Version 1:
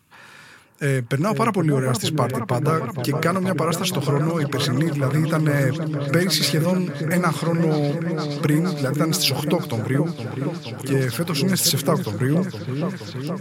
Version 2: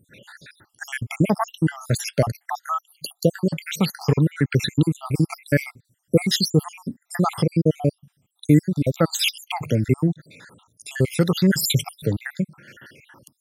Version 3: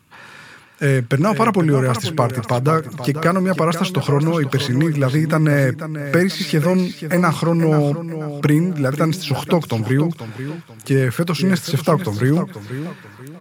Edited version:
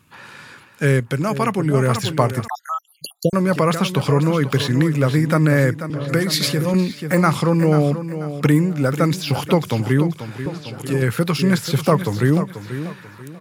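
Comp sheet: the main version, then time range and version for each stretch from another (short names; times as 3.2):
3
1–1.74 from 1
2.48–3.33 from 2
5.9–6.74 from 1
10.46–11.02 from 1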